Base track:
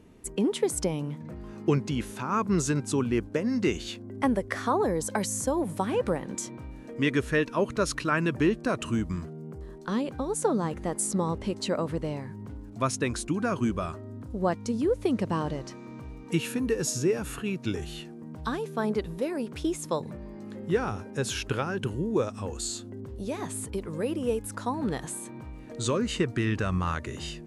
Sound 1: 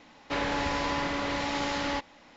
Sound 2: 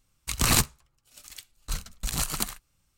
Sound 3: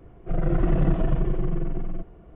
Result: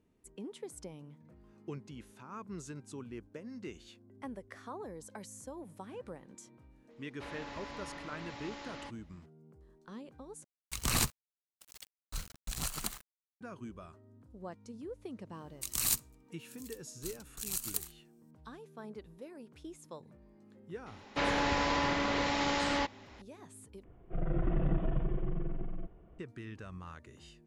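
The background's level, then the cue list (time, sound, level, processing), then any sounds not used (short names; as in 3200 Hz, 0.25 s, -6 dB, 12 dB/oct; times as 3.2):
base track -18.5 dB
6.9 add 1 -16 dB
10.44 replace with 2 -8.5 dB + bit-crush 7-bit
15.34 add 2 -6.5 dB + pre-emphasis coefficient 0.8
20.86 add 1 -1 dB
23.84 replace with 3 -9.5 dB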